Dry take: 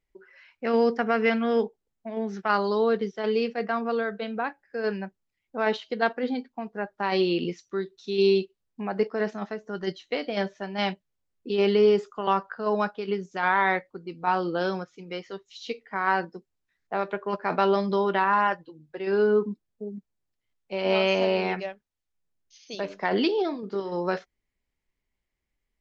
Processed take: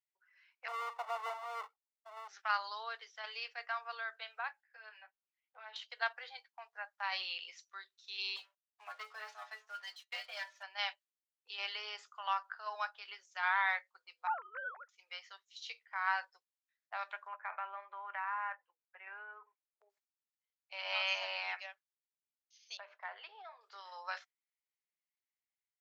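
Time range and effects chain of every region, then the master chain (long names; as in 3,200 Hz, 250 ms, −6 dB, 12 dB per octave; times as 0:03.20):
0:00.68–0:02.28: each half-wave held at its own peak + Savitzky-Golay smoothing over 65 samples
0:04.61–0:05.76: low-pass filter 4,000 Hz 24 dB per octave + downward compressor 5 to 1, threshold −36 dBFS + double-tracking delay 14 ms −2.5 dB
0:08.36–0:10.63: stiff-string resonator 63 Hz, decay 0.33 s, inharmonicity 0.008 + leveller curve on the samples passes 2
0:14.27–0:14.89: three sine waves on the formant tracks + low-pass filter 1,700 Hz 24 dB per octave + one half of a high-frequency compander encoder only
0:17.27–0:19.90: Chebyshev band-pass filter 120–2,400 Hz, order 4 + downward compressor 3 to 1, threshold −24 dBFS + high-frequency loss of the air 77 metres
0:22.77–0:23.61: low-pass filter 1,700 Hz + downward compressor 2 to 1, threshold −29 dBFS
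whole clip: noise gate −44 dBFS, range −6 dB; Bessel high-pass filter 1,300 Hz, order 8; automatic gain control gain up to 3 dB; level −8 dB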